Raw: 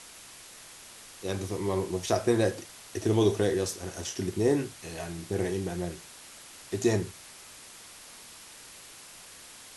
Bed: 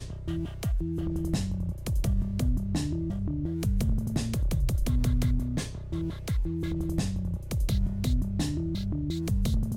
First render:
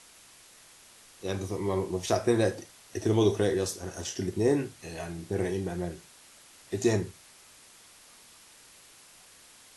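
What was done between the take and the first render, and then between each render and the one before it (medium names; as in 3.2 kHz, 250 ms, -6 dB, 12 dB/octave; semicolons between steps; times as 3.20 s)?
noise print and reduce 6 dB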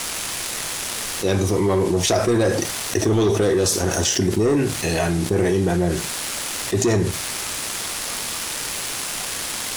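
waveshaping leveller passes 2; level flattener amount 70%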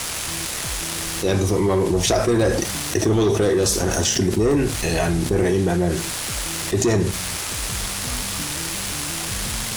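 add bed -5 dB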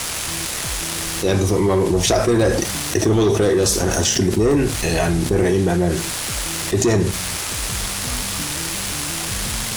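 trim +2 dB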